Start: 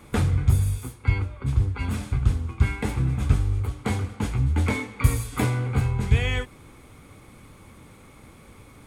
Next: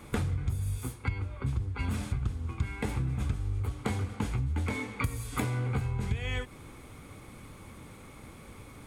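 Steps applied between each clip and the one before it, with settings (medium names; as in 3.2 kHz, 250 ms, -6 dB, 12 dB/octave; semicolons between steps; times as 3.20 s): compression 12:1, threshold -27 dBFS, peak gain reduction 16.5 dB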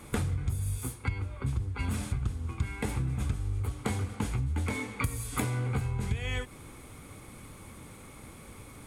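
peaking EQ 10 kHz +6 dB 1.1 oct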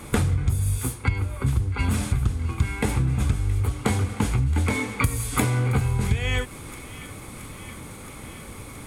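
feedback echo behind a high-pass 672 ms, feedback 74%, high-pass 1.5 kHz, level -15.5 dB; trim +8.5 dB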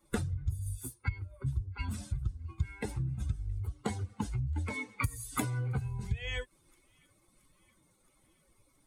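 expander on every frequency bin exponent 2; trim -7 dB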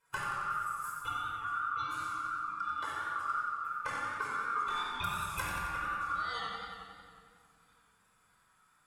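ring modulator 1.3 kHz; simulated room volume 3400 m³, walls mixed, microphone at 4.9 m; modulated delay 91 ms, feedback 67%, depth 84 cents, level -7 dB; trim -6 dB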